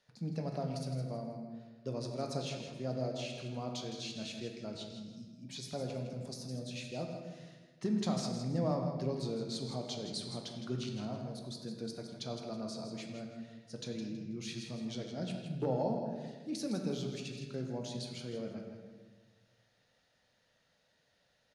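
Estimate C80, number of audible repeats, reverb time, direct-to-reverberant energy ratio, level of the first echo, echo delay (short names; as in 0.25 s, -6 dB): 4.0 dB, 2, 1.4 s, 1.5 dB, -8.5 dB, 0.162 s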